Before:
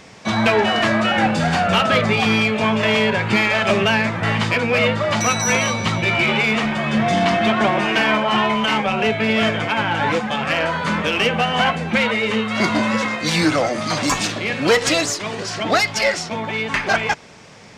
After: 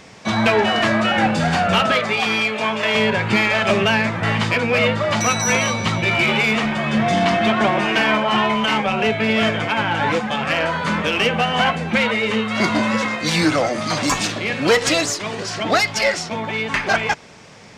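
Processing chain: 1.92–2.95 s: high-pass 500 Hz 6 dB/octave; 6.11–6.57 s: treble shelf 8.3 kHz +7 dB

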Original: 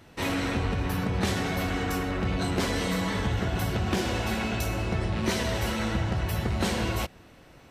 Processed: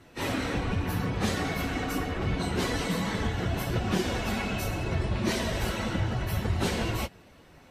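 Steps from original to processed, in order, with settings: phase randomisation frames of 50 ms; trim -1.5 dB

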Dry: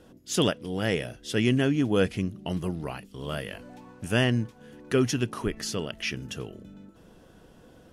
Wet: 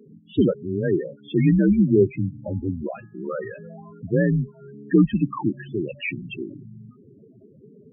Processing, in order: mistuned SSB -81 Hz 210–3100 Hz; loudest bins only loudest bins 8; 2.07–3.74 s: de-hum 419.5 Hz, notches 4; trim +8.5 dB

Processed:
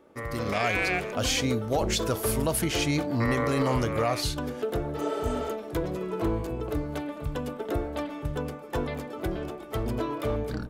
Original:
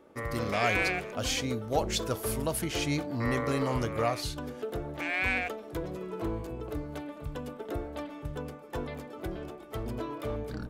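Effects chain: spectral replace 4.98–5.49 s, 370–5800 Hz after; peak limiter -22.5 dBFS, peak gain reduction 8 dB; level rider gain up to 6 dB

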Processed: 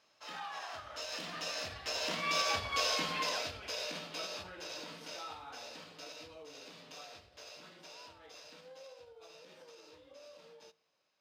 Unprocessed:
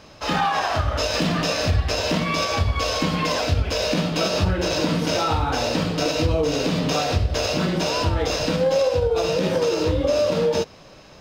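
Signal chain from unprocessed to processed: Doppler pass-by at 2.69 s, 5 m/s, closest 2.5 m; high-pass 1.1 kHz 6 dB/octave; on a send: reverberation RT60 0.50 s, pre-delay 8 ms, DRR 22 dB; on the sum: trim -5 dB

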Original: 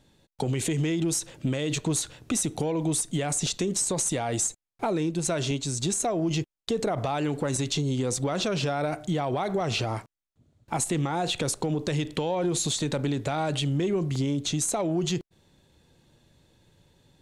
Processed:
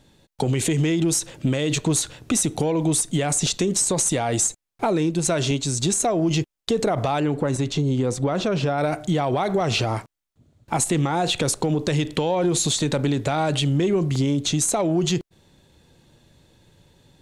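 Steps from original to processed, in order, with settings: 7.20–8.78 s: treble shelf 2.6 kHz -10 dB; trim +5.5 dB

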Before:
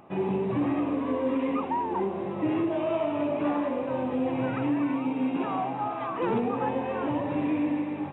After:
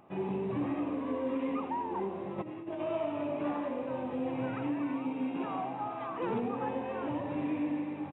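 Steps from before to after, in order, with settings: 2.38–2.83 s: compressor with a negative ratio -31 dBFS, ratio -0.5; delay 88 ms -14 dB; trim -6.5 dB

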